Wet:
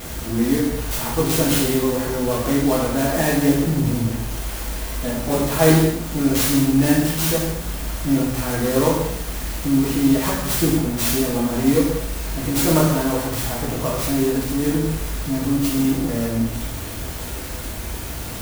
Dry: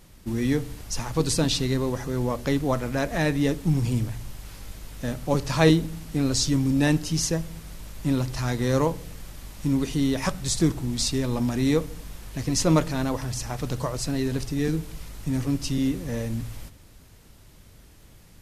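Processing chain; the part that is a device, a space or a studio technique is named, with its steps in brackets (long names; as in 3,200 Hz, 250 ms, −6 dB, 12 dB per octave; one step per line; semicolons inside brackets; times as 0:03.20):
high-pass filter 64 Hz 6 dB per octave
early CD player with a faulty converter (converter with a step at zero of −28.5 dBFS; converter with an unsteady clock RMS 0.069 ms)
reverb whose tail is shaped and stops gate 300 ms falling, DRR −6 dB
level −2.5 dB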